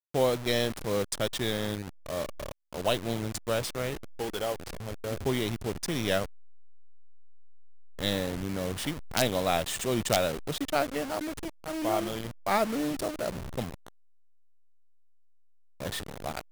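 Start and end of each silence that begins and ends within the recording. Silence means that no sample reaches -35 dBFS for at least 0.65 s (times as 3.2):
6.26–7.99
13.88–15.8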